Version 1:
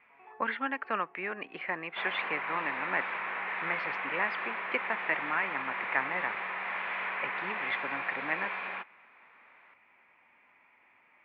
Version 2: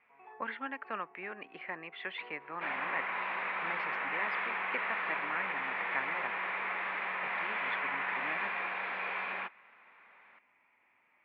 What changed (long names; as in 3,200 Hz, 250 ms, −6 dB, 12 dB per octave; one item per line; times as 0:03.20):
speech −6.5 dB
second sound: entry +0.65 s